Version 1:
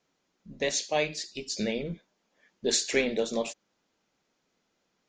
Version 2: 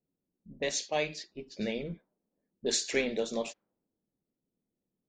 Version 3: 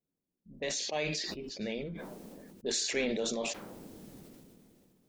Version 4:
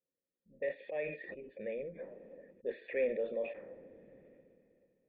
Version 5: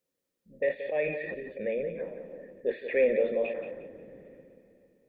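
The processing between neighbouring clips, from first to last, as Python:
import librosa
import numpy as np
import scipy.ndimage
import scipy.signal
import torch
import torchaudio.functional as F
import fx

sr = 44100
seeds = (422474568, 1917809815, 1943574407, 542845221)

y1 = fx.env_lowpass(x, sr, base_hz=300.0, full_db=-25.5)
y1 = y1 * 10.0 ** (-3.5 / 20.0)
y2 = fx.sustainer(y1, sr, db_per_s=22.0)
y2 = y2 * 10.0 ** (-4.0 / 20.0)
y3 = fx.formant_cascade(y2, sr, vowel='e')
y3 = y3 * 10.0 ** (6.5 / 20.0)
y4 = fx.echo_feedback(y3, sr, ms=178, feedback_pct=29, wet_db=-10)
y4 = y4 * 10.0 ** (8.5 / 20.0)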